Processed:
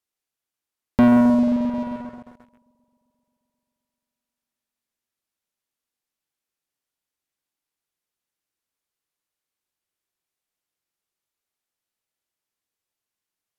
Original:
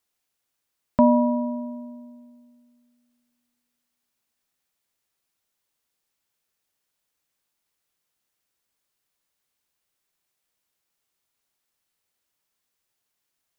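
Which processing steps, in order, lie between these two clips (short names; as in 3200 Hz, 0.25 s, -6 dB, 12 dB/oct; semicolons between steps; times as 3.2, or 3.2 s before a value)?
treble ducked by the level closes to 520 Hz, closed at -28.5 dBFS; bell 330 Hz +2.5 dB 0.6 oct; spring tank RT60 3.6 s, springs 44 ms, chirp 40 ms, DRR 6.5 dB; sample leveller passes 3; gain -1.5 dB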